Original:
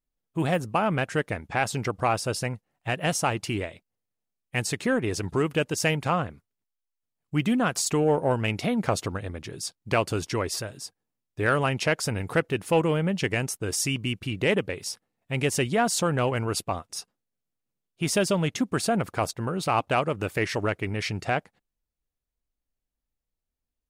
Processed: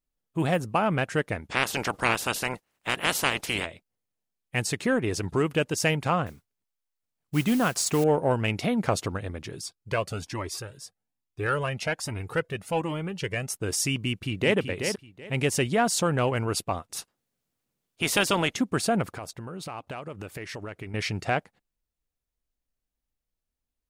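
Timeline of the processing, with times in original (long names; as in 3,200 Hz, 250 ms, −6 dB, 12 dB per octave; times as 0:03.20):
0:01.49–0:03.65: ceiling on every frequency bin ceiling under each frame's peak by 23 dB
0:06.26–0:08.04: noise that follows the level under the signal 18 dB
0:09.61–0:13.50: flanger whose copies keep moving one way rising 1.2 Hz
0:14.05–0:14.57: delay throw 380 ms, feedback 20%, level −6.5 dB
0:16.92–0:18.54: ceiling on every frequency bin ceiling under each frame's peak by 16 dB
0:19.14–0:20.94: downward compressor 4 to 1, threshold −35 dBFS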